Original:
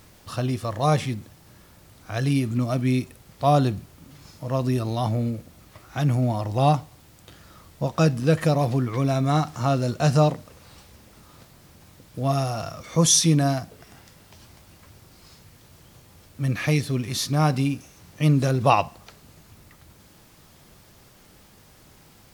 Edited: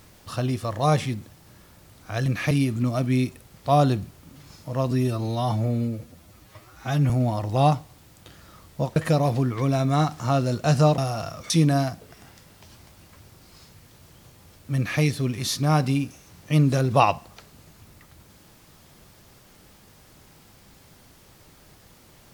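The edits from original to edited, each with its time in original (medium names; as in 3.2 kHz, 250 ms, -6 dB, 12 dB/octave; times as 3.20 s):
4.66–6.12 s: stretch 1.5×
7.98–8.32 s: delete
10.34–12.38 s: delete
12.90–13.20 s: delete
16.46–16.71 s: copy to 2.26 s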